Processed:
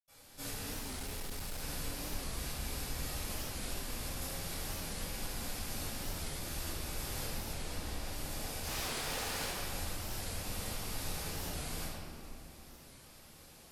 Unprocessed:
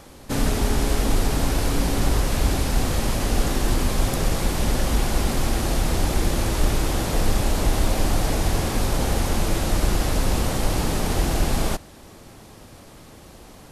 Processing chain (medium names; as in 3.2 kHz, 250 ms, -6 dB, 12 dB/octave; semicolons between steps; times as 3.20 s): 7.43–8.02 s: treble shelf 8.9 kHz -7.5 dB; compression 4:1, threshold -23 dBFS, peak gain reduction 9 dB; pre-emphasis filter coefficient 0.9; 8.55–9.40 s: overdrive pedal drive 20 dB, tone 5.2 kHz, clips at -25.5 dBFS; flange 0.2 Hz, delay 9.5 ms, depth 5 ms, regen -38%; reverberation RT60 2.4 s, pre-delay 76 ms; 0.80–1.63 s: hard clipper -32.5 dBFS, distortion -24 dB; warped record 45 rpm, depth 160 cents; trim -4 dB